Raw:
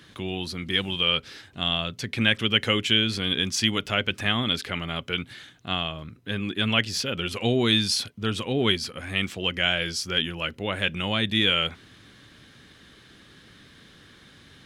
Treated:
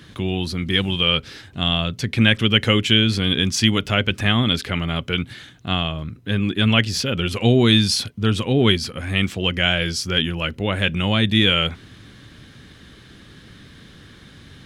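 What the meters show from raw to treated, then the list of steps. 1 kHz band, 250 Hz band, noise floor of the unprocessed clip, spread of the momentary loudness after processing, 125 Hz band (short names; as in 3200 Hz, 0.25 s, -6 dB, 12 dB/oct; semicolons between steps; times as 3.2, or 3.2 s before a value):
+4.5 dB, +8.0 dB, -53 dBFS, 9 LU, +10.5 dB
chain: low shelf 230 Hz +8.5 dB; gain +4 dB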